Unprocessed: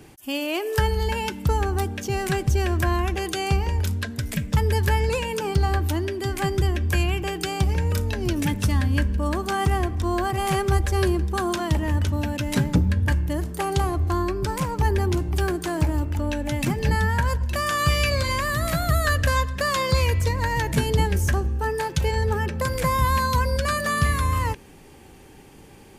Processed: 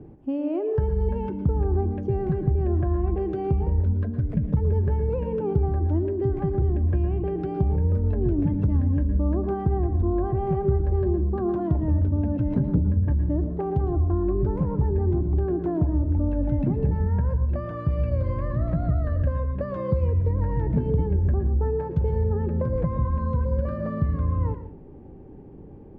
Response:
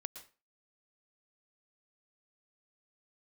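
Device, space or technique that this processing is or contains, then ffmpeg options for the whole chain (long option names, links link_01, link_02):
television next door: -filter_complex "[0:a]acompressor=threshold=-23dB:ratio=6,lowpass=460[link_01];[1:a]atrim=start_sample=2205[link_02];[link_01][link_02]afir=irnorm=-1:irlink=0,volume=8.5dB"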